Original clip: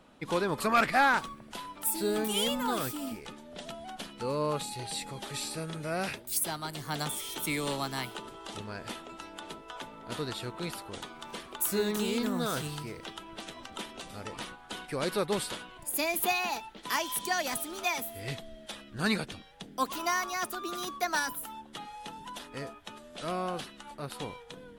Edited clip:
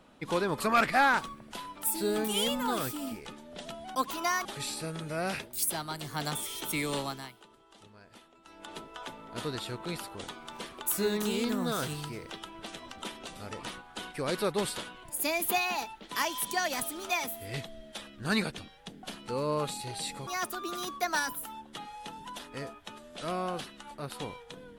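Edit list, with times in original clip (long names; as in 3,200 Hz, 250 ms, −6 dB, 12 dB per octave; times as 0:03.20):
0:03.95–0:05.19: swap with 0:19.77–0:20.27
0:07.73–0:09.49: duck −15 dB, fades 0.33 s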